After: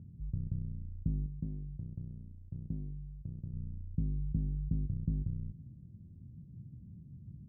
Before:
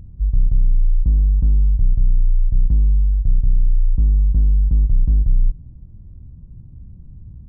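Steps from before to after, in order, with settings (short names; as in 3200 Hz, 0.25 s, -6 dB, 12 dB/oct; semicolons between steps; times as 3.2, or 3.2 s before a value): ladder band-pass 200 Hz, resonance 20%; 1.26–3.54 low shelf 140 Hz -9.5 dB; gain +6 dB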